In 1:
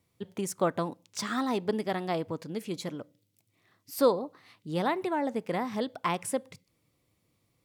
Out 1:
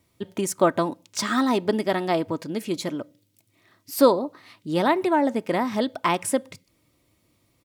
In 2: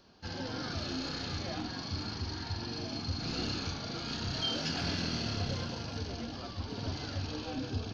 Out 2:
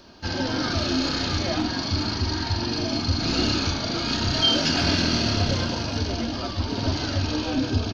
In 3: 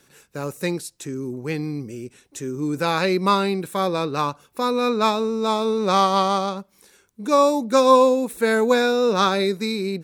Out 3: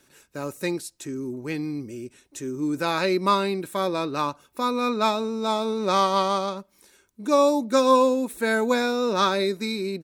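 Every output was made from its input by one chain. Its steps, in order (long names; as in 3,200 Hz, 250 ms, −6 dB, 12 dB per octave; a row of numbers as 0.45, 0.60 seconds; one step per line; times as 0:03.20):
comb filter 3.2 ms, depth 34%
loudness normalisation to −24 LKFS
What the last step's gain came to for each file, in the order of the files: +7.0, +12.0, −3.0 decibels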